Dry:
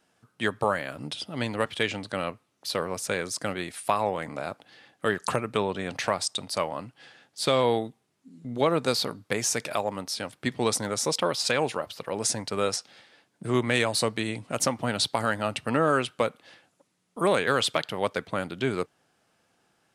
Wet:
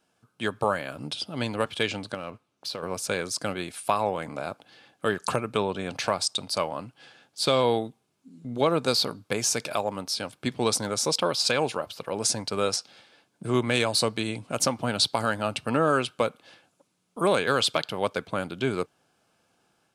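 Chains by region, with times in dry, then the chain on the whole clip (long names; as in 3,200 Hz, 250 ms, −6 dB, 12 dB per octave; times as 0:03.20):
0:02.14–0:02.83: downward compressor 10 to 1, threshold −33 dBFS + high-shelf EQ 7,200 Hz −9 dB + leveller curve on the samples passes 1
whole clip: notch filter 1,900 Hz, Q 6.4; automatic gain control gain up to 3 dB; dynamic equaliser 4,600 Hz, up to +4 dB, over −39 dBFS, Q 2.4; level −2.5 dB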